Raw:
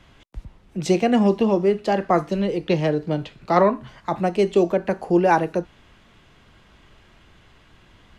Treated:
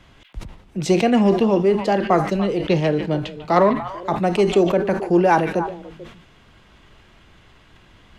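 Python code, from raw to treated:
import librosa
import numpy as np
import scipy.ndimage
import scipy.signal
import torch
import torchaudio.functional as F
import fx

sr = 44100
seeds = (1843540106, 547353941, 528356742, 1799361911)

p1 = np.clip(x, -10.0 ** (-12.5 / 20.0), 10.0 ** (-12.5 / 20.0))
p2 = x + (p1 * librosa.db_to_amplitude(-9.0))
p3 = fx.echo_stepped(p2, sr, ms=146, hz=2700.0, octaves=-1.4, feedback_pct=70, wet_db=-9.0)
p4 = fx.sustainer(p3, sr, db_per_s=96.0)
y = p4 * librosa.db_to_amplitude(-1.0)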